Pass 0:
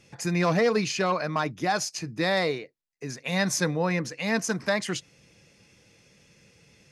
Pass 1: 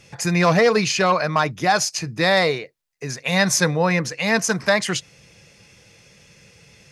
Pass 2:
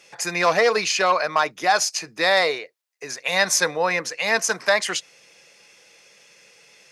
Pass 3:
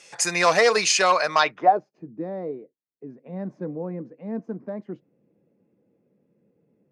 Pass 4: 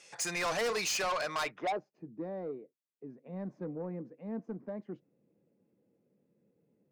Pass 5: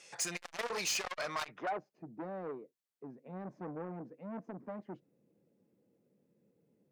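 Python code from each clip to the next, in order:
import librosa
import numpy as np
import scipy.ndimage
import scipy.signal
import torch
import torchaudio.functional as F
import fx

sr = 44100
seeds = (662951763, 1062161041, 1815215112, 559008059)

y1 = fx.peak_eq(x, sr, hz=280.0, db=-7.0, octaves=0.91)
y1 = y1 * librosa.db_to_amplitude(8.5)
y2 = scipy.signal.sosfilt(scipy.signal.butter(2, 450.0, 'highpass', fs=sr, output='sos'), y1)
y3 = fx.filter_sweep_lowpass(y2, sr, from_hz=8700.0, to_hz=260.0, start_s=1.32, end_s=1.82, q=2.4)
y4 = 10.0 ** (-22.0 / 20.0) * np.tanh(y3 / 10.0 ** (-22.0 / 20.0))
y4 = y4 * librosa.db_to_amplitude(-7.0)
y5 = fx.transformer_sat(y4, sr, knee_hz=790.0)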